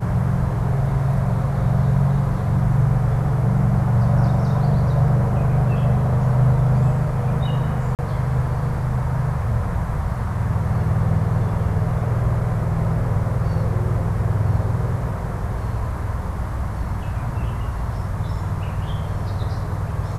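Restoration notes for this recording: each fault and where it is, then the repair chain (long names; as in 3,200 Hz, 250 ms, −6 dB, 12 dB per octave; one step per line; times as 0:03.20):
0:07.95–0:07.99: drop-out 38 ms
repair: repair the gap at 0:07.95, 38 ms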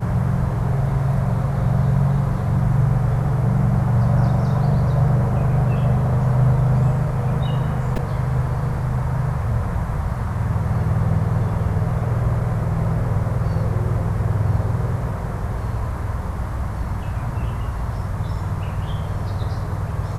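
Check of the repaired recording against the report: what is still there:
none of them is left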